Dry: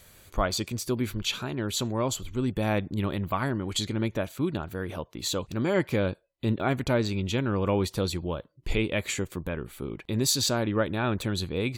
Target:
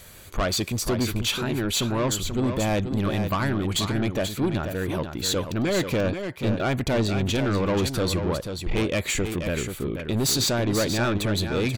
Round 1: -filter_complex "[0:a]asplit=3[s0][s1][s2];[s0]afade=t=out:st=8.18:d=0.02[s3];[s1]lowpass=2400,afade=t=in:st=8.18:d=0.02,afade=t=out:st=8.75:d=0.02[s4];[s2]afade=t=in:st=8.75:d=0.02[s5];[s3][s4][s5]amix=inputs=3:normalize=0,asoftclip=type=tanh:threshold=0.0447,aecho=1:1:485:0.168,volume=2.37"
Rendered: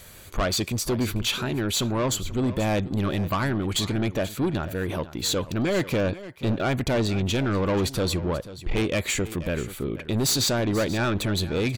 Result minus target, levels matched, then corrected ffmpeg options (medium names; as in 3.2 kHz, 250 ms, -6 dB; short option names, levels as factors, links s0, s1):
echo-to-direct -8 dB
-filter_complex "[0:a]asplit=3[s0][s1][s2];[s0]afade=t=out:st=8.18:d=0.02[s3];[s1]lowpass=2400,afade=t=in:st=8.18:d=0.02,afade=t=out:st=8.75:d=0.02[s4];[s2]afade=t=in:st=8.75:d=0.02[s5];[s3][s4][s5]amix=inputs=3:normalize=0,asoftclip=type=tanh:threshold=0.0447,aecho=1:1:485:0.422,volume=2.37"